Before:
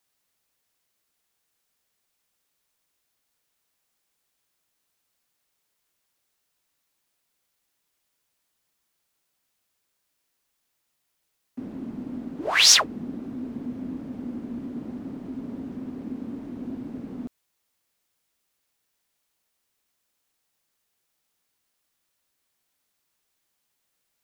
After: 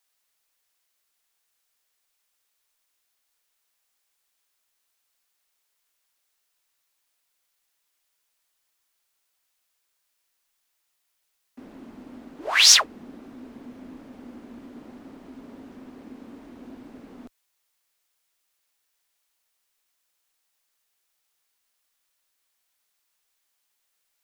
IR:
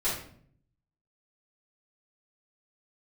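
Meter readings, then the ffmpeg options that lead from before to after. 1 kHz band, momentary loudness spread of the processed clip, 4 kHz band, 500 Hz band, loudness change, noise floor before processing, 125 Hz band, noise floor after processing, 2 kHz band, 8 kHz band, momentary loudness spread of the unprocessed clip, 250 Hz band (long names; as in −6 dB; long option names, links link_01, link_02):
−0.5 dB, 7 LU, +1.5 dB, −3.5 dB, +9.0 dB, −77 dBFS, below −10 dB, −75 dBFS, +1.0 dB, +1.5 dB, 20 LU, −9.5 dB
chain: -af "equalizer=frequency=140:width=0.43:gain=-15,volume=1.5dB"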